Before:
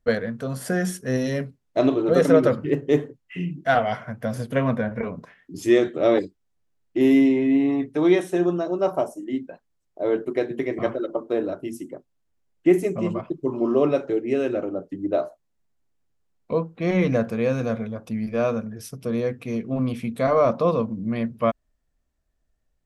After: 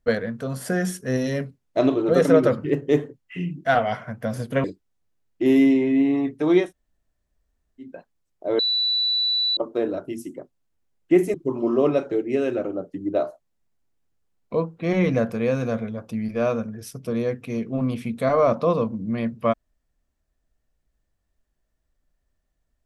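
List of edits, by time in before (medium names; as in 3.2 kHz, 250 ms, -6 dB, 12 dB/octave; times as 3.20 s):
4.64–6.19 s: delete
8.20–9.41 s: room tone, crossfade 0.16 s
10.14–11.12 s: bleep 3.96 kHz -19 dBFS
12.89–13.32 s: delete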